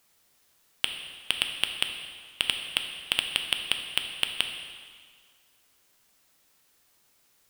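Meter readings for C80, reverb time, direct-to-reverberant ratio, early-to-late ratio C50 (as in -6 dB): 7.5 dB, 1.8 s, 4.5 dB, 6.5 dB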